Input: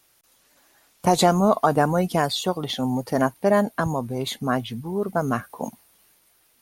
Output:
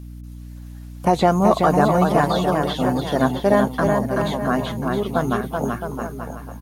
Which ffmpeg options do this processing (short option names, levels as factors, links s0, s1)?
-filter_complex "[0:a]acrossover=split=3200[s0][s1];[s1]acompressor=threshold=0.00891:ratio=4:attack=1:release=60[s2];[s0][s2]amix=inputs=2:normalize=0,aecho=1:1:380|665|878.8|1039|1159:0.631|0.398|0.251|0.158|0.1,aeval=exprs='val(0)+0.0158*(sin(2*PI*60*n/s)+sin(2*PI*2*60*n/s)/2+sin(2*PI*3*60*n/s)/3+sin(2*PI*4*60*n/s)/4+sin(2*PI*5*60*n/s)/5)':c=same,volume=1.19"